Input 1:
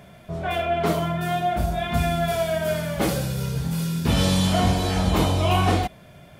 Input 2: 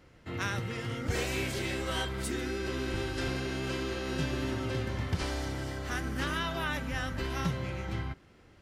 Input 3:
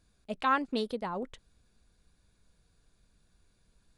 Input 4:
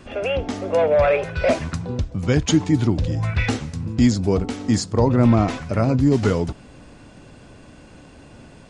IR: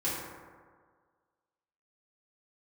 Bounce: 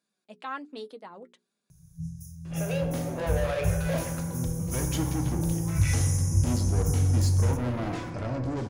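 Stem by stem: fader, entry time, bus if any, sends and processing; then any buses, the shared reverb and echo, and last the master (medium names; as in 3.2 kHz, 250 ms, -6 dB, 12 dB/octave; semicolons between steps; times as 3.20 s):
-4.0 dB, 1.70 s, send -13.5 dB, FFT band-reject 170–4900 Hz; rippled EQ curve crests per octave 1.5, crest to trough 11 dB
mute
-4.0 dB, 0.00 s, no send, high-pass 200 Hz 24 dB/octave; hum notches 60/120/180/240/300/360/420 Hz; flange 0.63 Hz, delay 4.9 ms, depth 2.2 ms, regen +46%
-9.0 dB, 2.45 s, send -9 dB, saturation -22.5 dBFS, distortion -6 dB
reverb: on, RT60 1.7 s, pre-delay 3 ms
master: none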